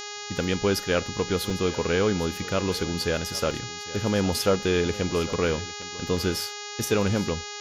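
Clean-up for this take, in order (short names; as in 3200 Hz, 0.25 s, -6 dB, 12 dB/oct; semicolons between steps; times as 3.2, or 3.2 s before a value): de-hum 413.5 Hz, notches 17; interpolate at 1.5/3.51/5.33/5.82/6.17, 2 ms; inverse comb 0.804 s -17.5 dB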